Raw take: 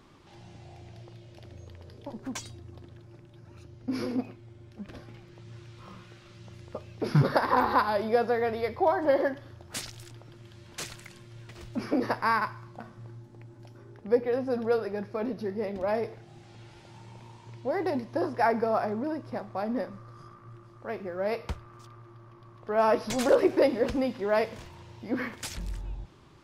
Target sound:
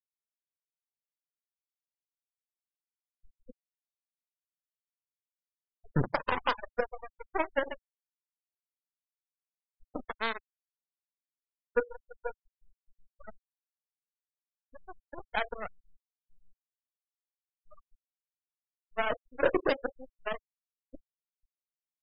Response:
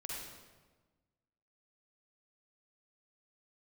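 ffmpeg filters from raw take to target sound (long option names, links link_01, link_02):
-filter_complex "[0:a]aeval=exprs='0.398*(cos(1*acos(clip(val(0)/0.398,-1,1)))-cos(1*PI/2))+0.00398*(cos(4*acos(clip(val(0)/0.398,-1,1)))-cos(4*PI/2))+0.0631*(cos(7*acos(clip(val(0)/0.398,-1,1)))-cos(7*PI/2))+0.0158*(cos(8*acos(clip(val(0)/0.398,-1,1)))-cos(8*PI/2))':channel_layout=same,highshelf=frequency=2300:gain=5.5,asplit=2[link_01][link_02];[1:a]atrim=start_sample=2205[link_03];[link_02][link_03]afir=irnorm=-1:irlink=0,volume=-18dB[link_04];[link_01][link_04]amix=inputs=2:normalize=0,atempo=1.2,asplit=2[link_05][link_06];[link_06]adelay=31,volume=-13dB[link_07];[link_05][link_07]amix=inputs=2:normalize=0,afftfilt=real='re*gte(hypot(re,im),0.0631)':imag='im*gte(hypot(re,im),0.0631)':win_size=1024:overlap=0.75,volume=-5dB"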